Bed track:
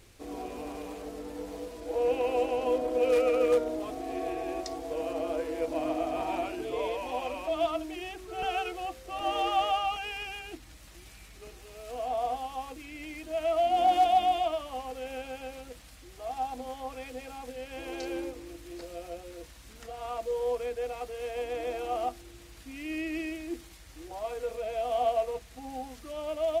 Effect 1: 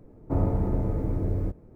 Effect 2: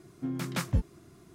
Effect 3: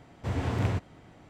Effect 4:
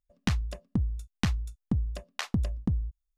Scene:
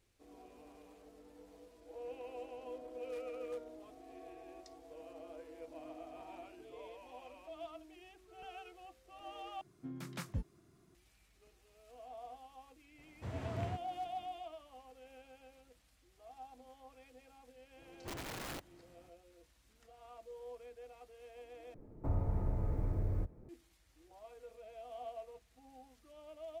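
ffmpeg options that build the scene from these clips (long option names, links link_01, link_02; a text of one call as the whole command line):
ffmpeg -i bed.wav -i cue0.wav -i cue1.wav -i cue2.wav -filter_complex "[3:a]asplit=2[link_01][link_02];[0:a]volume=-19dB[link_03];[link_02]aeval=exprs='(mod(21.1*val(0)+1,2)-1)/21.1':channel_layout=same[link_04];[1:a]acrossover=split=120|610[link_05][link_06][link_07];[link_05]acompressor=threshold=-25dB:ratio=4[link_08];[link_06]acompressor=threshold=-42dB:ratio=4[link_09];[link_07]acompressor=threshold=-43dB:ratio=4[link_10];[link_08][link_09][link_10]amix=inputs=3:normalize=0[link_11];[link_03]asplit=3[link_12][link_13][link_14];[link_12]atrim=end=9.614[link_15];[2:a]atrim=end=1.34,asetpts=PTS-STARTPTS,volume=-12dB[link_16];[link_13]atrim=start=10.946:end=21.744[link_17];[link_11]atrim=end=1.75,asetpts=PTS-STARTPTS,volume=-5dB[link_18];[link_14]atrim=start=23.486[link_19];[link_01]atrim=end=1.29,asetpts=PTS-STARTPTS,volume=-12.5dB,afade=type=in:duration=0.004:curve=hsin,afade=type=out:start_time=1.286:duration=0.004:curve=hsin,adelay=12980[link_20];[link_04]atrim=end=1.29,asetpts=PTS-STARTPTS,volume=-13dB,afade=type=in:duration=0.004:curve=hsin,afade=type=out:start_time=1.286:duration=0.004:curve=hsin,adelay=17810[link_21];[link_15][link_16]acrossfade=duration=0.004:curve1=hsin:curve2=hsin[link_22];[link_22][link_17]acrossfade=duration=0.004:curve1=hsin:curve2=hsin[link_23];[link_23][link_18]acrossfade=duration=0.004:curve1=hsin:curve2=hsin[link_24];[link_24][link_19]acrossfade=duration=0.004:curve1=hsin:curve2=hsin[link_25];[link_25][link_20][link_21]amix=inputs=3:normalize=0" out.wav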